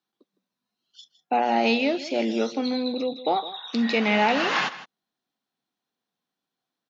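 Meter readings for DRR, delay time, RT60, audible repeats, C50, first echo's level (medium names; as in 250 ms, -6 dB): no reverb, 160 ms, no reverb, 1, no reverb, -15.5 dB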